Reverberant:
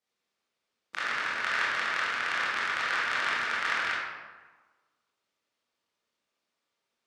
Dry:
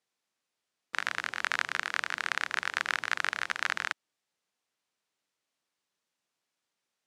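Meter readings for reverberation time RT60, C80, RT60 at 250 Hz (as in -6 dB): 1.3 s, 1.5 dB, 1.3 s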